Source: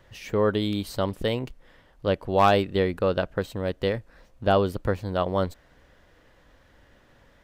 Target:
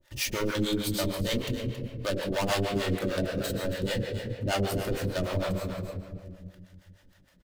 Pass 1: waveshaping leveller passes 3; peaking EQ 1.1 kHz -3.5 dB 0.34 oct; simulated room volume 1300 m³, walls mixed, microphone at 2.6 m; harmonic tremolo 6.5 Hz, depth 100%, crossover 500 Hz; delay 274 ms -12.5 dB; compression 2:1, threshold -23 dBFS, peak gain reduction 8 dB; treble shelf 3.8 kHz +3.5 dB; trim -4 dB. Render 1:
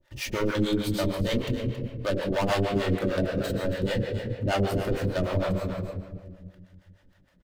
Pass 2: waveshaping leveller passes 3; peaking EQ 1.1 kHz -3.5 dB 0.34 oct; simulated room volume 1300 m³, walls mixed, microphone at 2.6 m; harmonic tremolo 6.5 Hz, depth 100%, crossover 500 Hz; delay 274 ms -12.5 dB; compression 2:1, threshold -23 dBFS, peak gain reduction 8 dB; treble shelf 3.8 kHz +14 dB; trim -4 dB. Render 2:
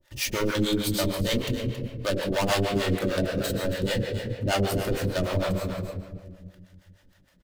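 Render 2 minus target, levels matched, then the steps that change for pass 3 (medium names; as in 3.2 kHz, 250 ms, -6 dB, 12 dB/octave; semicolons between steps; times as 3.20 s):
compression: peak gain reduction -3.5 dB
change: compression 2:1, threshold -29.5 dBFS, peak gain reduction 11 dB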